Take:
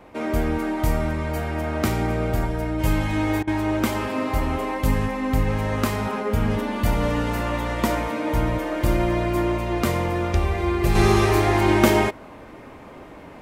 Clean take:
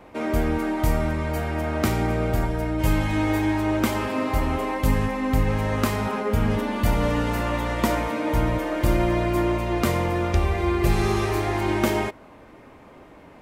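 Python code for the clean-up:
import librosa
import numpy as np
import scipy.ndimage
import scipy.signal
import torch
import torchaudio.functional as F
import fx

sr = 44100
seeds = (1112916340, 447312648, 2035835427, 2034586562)

y = fx.fix_interpolate(x, sr, at_s=(3.43,), length_ms=43.0)
y = fx.gain(y, sr, db=fx.steps((0.0, 0.0), (10.95, -5.5)))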